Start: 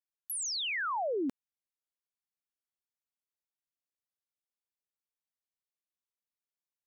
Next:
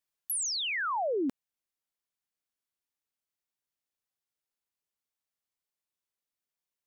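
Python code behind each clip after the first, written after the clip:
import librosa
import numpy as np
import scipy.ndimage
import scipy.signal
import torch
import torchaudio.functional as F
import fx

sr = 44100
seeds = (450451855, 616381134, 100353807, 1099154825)

y = fx.rider(x, sr, range_db=10, speed_s=0.5)
y = y * 10.0 ** (3.0 / 20.0)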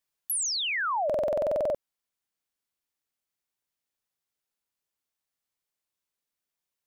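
y = fx.buffer_glitch(x, sr, at_s=(1.05,), block=2048, repeats=14)
y = y * 10.0 ** (3.0 / 20.0)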